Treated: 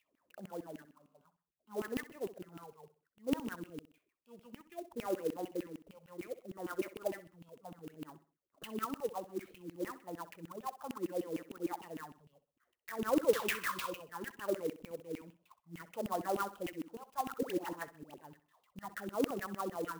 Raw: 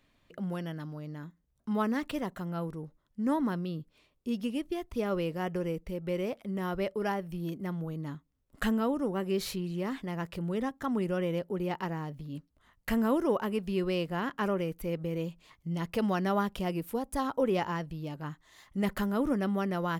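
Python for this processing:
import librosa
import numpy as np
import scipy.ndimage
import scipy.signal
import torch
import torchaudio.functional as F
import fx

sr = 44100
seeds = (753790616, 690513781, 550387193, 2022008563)

y = fx.peak_eq(x, sr, hz=190.0, db=-10.5, octaves=1.0, at=(12.29, 12.99))
y = fx.spec_paint(y, sr, seeds[0], shape='noise', start_s=13.31, length_s=0.6, low_hz=960.0, high_hz=7700.0, level_db=-24.0)
y = fx.phaser_stages(y, sr, stages=4, low_hz=310.0, high_hz=4600.0, hz=0.63, feedback_pct=0)
y = fx.filter_lfo_bandpass(y, sr, shape='saw_down', hz=6.6, low_hz=260.0, high_hz=2900.0, q=7.1)
y = fx.comb_fb(y, sr, f0_hz=67.0, decay_s=1.5, harmonics='all', damping=0.0, mix_pct=70, at=(0.85, 1.25))
y = fx.dispersion(y, sr, late='highs', ms=91.0, hz=1200.0, at=(17.32, 18.14))
y = fx.echo_feedback(y, sr, ms=64, feedback_pct=36, wet_db=-15.0)
y = fx.clock_jitter(y, sr, seeds[1], jitter_ms=0.034)
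y = y * 10.0 ** (6.0 / 20.0)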